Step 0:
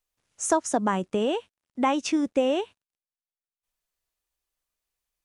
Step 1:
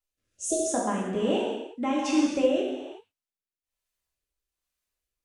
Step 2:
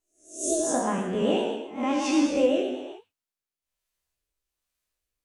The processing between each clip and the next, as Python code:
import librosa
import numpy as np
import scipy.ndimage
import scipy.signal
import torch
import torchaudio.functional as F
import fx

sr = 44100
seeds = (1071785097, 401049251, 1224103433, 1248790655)

y1 = fx.spec_repair(x, sr, seeds[0], start_s=0.34, length_s=0.31, low_hz=660.0, high_hz=2600.0, source='before')
y1 = fx.rev_gated(y1, sr, seeds[1], gate_ms=410, shape='falling', drr_db=-5.0)
y1 = fx.rotary(y1, sr, hz=1.2)
y1 = y1 * librosa.db_to_amplitude(-4.5)
y2 = fx.spec_swells(y1, sr, rise_s=0.43)
y2 = fx.vibrato(y2, sr, rate_hz=8.0, depth_cents=47.0)